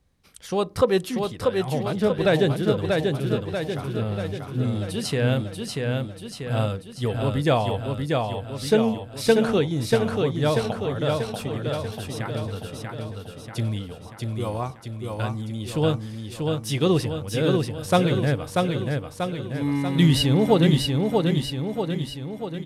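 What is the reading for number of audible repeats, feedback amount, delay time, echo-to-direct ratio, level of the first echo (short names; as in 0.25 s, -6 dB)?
7, 56%, 0.638 s, -2.0 dB, -3.5 dB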